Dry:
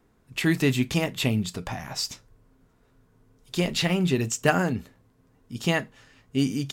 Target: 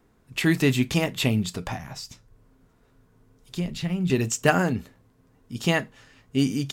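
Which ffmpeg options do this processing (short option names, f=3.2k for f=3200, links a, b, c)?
-filter_complex "[0:a]asettb=1/sr,asplit=3[a][b][c];[a]atrim=end=1.774[d];[b]atrim=start=1.77:end=4.1,asetpts=PTS-STARTPTS,afade=t=in:d=0.004:c=qsin,afade=t=out:st=2.326:d=0.004:c=qsin,acrossover=split=210[e][f];[f]acompressor=threshold=-46dB:ratio=2[g];[e][g]amix=inputs=2:normalize=0[h];[c]atrim=start=4.096[i];[d][h]acrossfade=d=0.004:c1=hsin:c2=qsin[j];[j][i]acrossfade=d=0.004:c1=qsin:c2=hsin,volume=1.5dB"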